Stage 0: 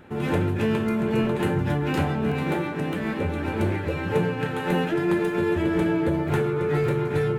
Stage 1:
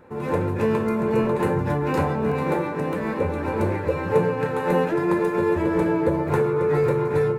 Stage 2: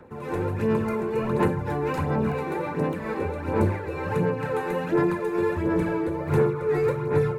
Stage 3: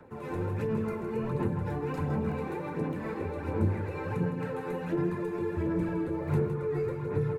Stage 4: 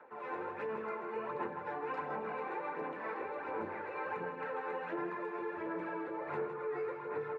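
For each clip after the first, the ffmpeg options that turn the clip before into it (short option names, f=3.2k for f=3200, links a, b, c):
-af "dynaudnorm=f=270:g=3:m=4dB,equalizer=f=500:t=o:w=0.33:g=11,equalizer=f=1k:t=o:w=0.33:g=10,equalizer=f=3.15k:t=o:w=0.33:g=-10,volume=-4.5dB"
-filter_complex "[0:a]acrossover=split=190|360|970[a][b][c][d];[c]alimiter=limit=-23dB:level=0:latency=1[e];[a][b][e][d]amix=inputs=4:normalize=0,aphaser=in_gain=1:out_gain=1:delay=2.7:decay=0.49:speed=1.4:type=sinusoidal,tremolo=f=2.2:d=0.35,volume=-2.5dB"
-filter_complex "[0:a]acrossover=split=320[a][b];[b]acompressor=threshold=-32dB:ratio=6[c];[a][c]amix=inputs=2:normalize=0,flanger=delay=6.8:depth=5.7:regen=-50:speed=1.5:shape=sinusoidal,aecho=1:1:161:0.335"
-af "highpass=700,lowpass=2.1k,volume=2.5dB"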